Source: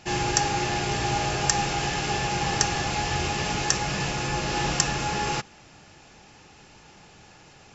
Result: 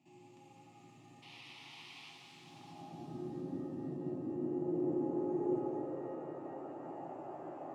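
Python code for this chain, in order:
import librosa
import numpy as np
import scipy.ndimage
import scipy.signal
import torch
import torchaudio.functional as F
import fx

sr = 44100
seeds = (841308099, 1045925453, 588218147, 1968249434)

p1 = scipy.ndimage.median_filter(x, 9, mode='constant')
p2 = fx.spec_paint(p1, sr, seeds[0], shape='noise', start_s=1.22, length_s=0.89, low_hz=680.0, high_hz=5600.0, level_db=-15.0)
p3 = p2 + fx.echo_alternate(p2, sr, ms=181, hz=820.0, feedback_pct=51, wet_db=-10.5, dry=0)
p4 = (np.kron(p3[::6], np.eye(6)[0]) * 6)[:len(p3)]
p5 = fx.filter_sweep_bandpass(p4, sr, from_hz=2600.0, to_hz=440.0, start_s=2.27, end_s=3.1, q=2.1)
p6 = fx.over_compress(p5, sr, threshold_db=-46.0, ratio=-1.0)
p7 = p5 + (p6 * 10.0 ** (1.0 / 20.0))
p8 = np.diff(p7, prepend=0.0)
p9 = fx.filter_sweep_lowpass(p8, sr, from_hz=230.0, to_hz=630.0, start_s=3.82, end_s=6.94, q=2.2)
p10 = fx.low_shelf_res(p9, sr, hz=320.0, db=9.0, q=1.5)
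p11 = fx.fixed_phaser(p10, sr, hz=310.0, stages=8)
p12 = fx.rev_shimmer(p11, sr, seeds[1], rt60_s=3.6, semitones=7, shimmer_db=-8, drr_db=0.5)
y = p12 * 10.0 ** (16.5 / 20.0)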